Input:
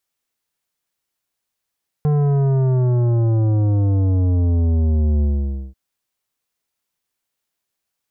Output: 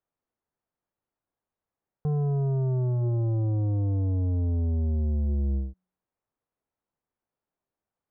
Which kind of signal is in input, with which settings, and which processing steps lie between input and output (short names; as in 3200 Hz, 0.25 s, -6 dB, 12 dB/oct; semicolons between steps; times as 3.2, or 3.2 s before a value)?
sub drop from 150 Hz, over 3.69 s, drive 11.5 dB, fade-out 0.52 s, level -15 dB
LPF 1000 Hz 12 dB/oct; limiter -24 dBFS; de-hum 183.5 Hz, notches 2